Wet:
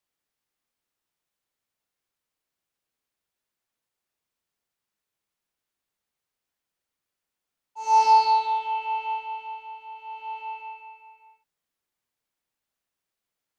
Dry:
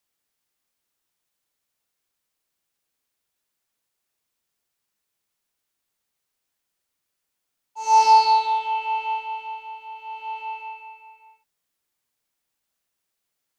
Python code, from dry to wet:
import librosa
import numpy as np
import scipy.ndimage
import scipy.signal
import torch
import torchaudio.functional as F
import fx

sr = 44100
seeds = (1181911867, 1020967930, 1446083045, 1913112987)

y = fx.high_shelf(x, sr, hz=3900.0, db=-6.0)
y = F.gain(torch.from_numpy(y), -2.5).numpy()